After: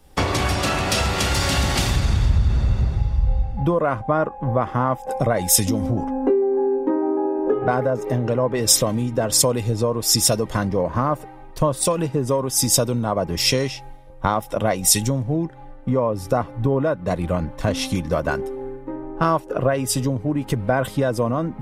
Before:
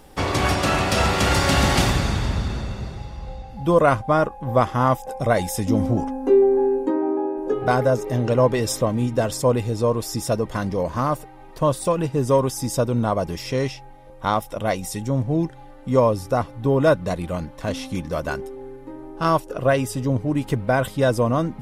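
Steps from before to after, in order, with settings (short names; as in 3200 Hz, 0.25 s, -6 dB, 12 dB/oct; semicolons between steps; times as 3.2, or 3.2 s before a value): in parallel at +3 dB: limiter -14.5 dBFS, peak gain reduction 10.5 dB; on the sum: compressor 10:1, threshold -21 dBFS, peak gain reduction 14 dB; three-band expander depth 100%; gain +4 dB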